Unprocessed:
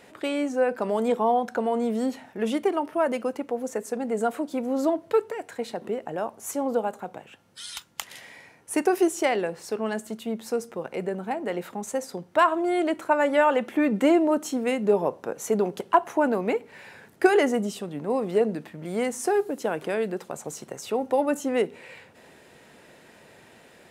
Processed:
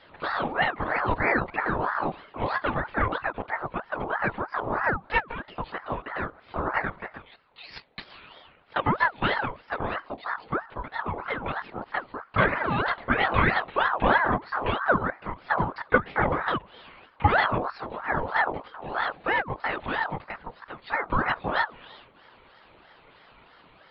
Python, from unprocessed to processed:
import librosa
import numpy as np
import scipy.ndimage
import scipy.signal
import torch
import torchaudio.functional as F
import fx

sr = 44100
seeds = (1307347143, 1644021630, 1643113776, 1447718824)

y = fx.lpc_vocoder(x, sr, seeds[0], excitation='whisper', order=16)
y = fx.ring_lfo(y, sr, carrier_hz=920.0, swing_pct=50, hz=3.1)
y = y * librosa.db_to_amplitude(1.0)